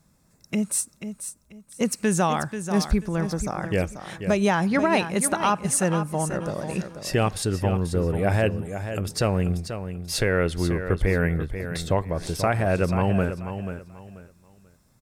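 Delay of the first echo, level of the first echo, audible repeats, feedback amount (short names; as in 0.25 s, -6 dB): 0.487 s, -9.5 dB, 3, 25%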